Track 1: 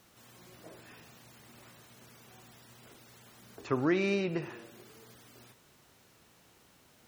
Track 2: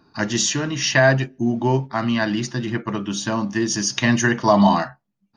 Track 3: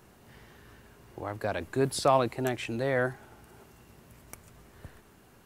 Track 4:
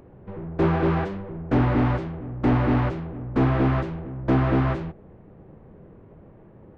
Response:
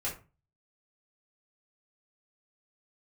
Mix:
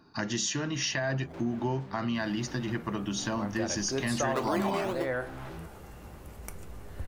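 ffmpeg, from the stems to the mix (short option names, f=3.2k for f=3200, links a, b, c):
-filter_complex "[0:a]acrusher=samples=13:mix=1:aa=0.000001:lfo=1:lforange=7.8:lforate=2,highpass=230,equalizer=f=850:t=o:w=2.5:g=14.5,adelay=650,afade=t=in:st=3.58:d=0.54:silence=0.334965,asplit=2[a][b];[b]volume=-13dB[c];[1:a]alimiter=limit=-10.5dB:level=0:latency=1:release=26,volume=-2.5dB,asplit=2[d][e];[2:a]asubboost=boost=6.5:cutoff=66,adelay=2150,volume=1.5dB,asplit=2[f][g];[g]volume=-11.5dB[h];[3:a]equalizer=f=7.7k:w=0.42:g=10.5,acompressor=threshold=-31dB:ratio=4,asoftclip=type=tanh:threshold=-36dB,adelay=750,volume=-3.5dB[i];[e]apad=whole_len=340600[j];[a][j]sidechaingate=range=-33dB:threshold=-51dB:ratio=16:detection=peak[k];[4:a]atrim=start_sample=2205[l];[c][h]amix=inputs=2:normalize=0[m];[m][l]afir=irnorm=-1:irlink=0[n];[k][d][f][i][n]amix=inputs=5:normalize=0,acompressor=threshold=-31dB:ratio=2.5"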